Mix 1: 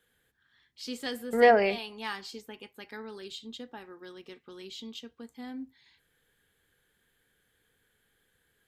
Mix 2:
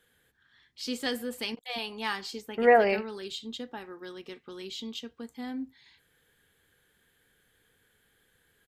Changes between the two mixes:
first voice +4.0 dB
second voice: entry +1.25 s

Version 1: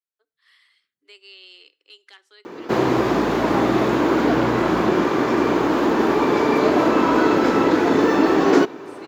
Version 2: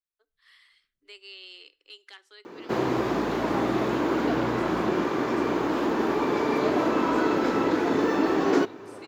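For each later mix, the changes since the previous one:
second voice: remove high-pass filter 170 Hz 12 dB per octave
background −7.0 dB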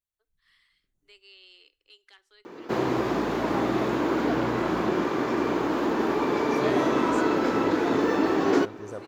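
first voice −7.5 dB
second voice +11.0 dB

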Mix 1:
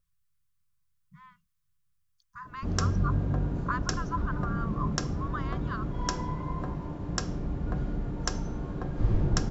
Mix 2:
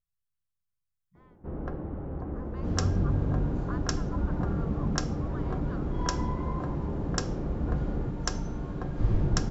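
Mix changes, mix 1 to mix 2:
speech −11.0 dB
first sound: unmuted

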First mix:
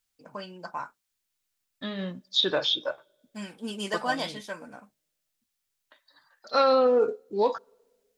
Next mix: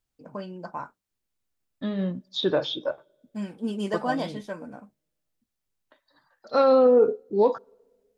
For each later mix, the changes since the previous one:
master: add tilt shelving filter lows +7.5 dB, about 940 Hz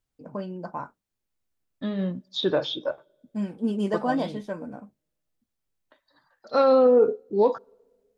first voice: add tilt shelving filter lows +4 dB, about 1,100 Hz

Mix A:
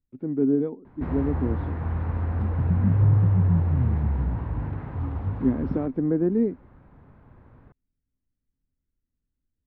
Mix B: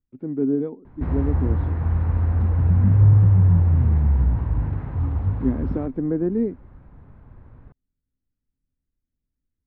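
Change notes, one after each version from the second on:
background: add low-shelf EQ 100 Hz +11 dB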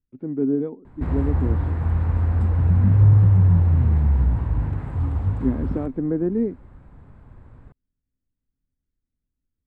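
background: remove high-frequency loss of the air 200 metres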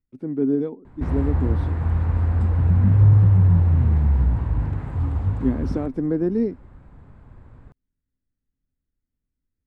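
background: add high-frequency loss of the air 360 metres
master: remove high-frequency loss of the air 420 metres

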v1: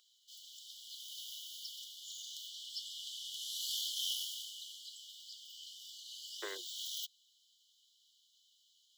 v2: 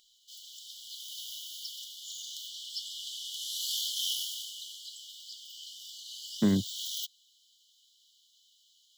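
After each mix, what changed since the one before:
speech: add tilt shelving filter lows +8.5 dB, about 1,400 Hz
master: remove Chebyshev high-pass with heavy ripple 340 Hz, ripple 6 dB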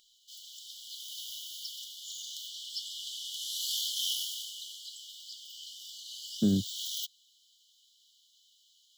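speech: add moving average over 45 samples

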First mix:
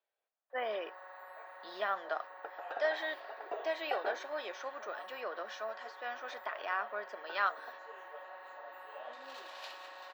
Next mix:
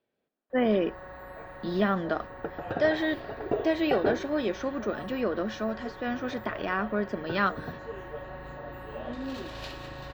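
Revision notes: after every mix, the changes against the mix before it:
master: remove four-pole ladder high-pass 570 Hz, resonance 25%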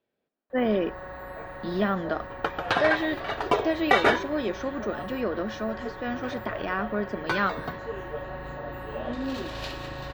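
first sound +4.5 dB
second sound: remove moving average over 41 samples

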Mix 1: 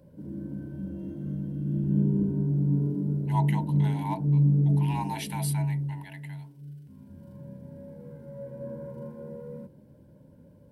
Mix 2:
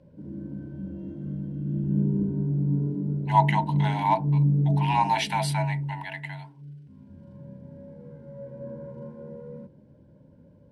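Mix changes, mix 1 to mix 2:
speech +12.0 dB
master: add high-frequency loss of the air 100 metres

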